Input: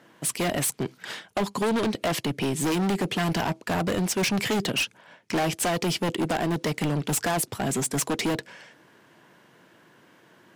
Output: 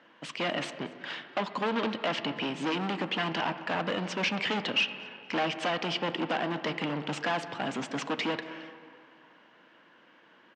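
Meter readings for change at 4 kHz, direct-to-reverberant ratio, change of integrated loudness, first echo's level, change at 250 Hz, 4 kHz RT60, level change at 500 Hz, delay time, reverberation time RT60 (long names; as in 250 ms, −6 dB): −1.0 dB, 10.0 dB, −5.0 dB, −21.0 dB, −7.0 dB, 1.5 s, −5.0 dB, 230 ms, 2.5 s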